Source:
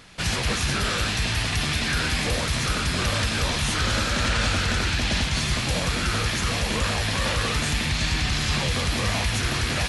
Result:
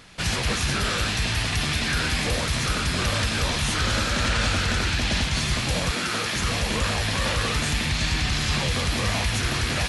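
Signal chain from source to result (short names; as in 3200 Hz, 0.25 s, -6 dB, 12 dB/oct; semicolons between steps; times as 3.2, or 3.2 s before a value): 5.91–6.35 HPF 190 Hz 12 dB/oct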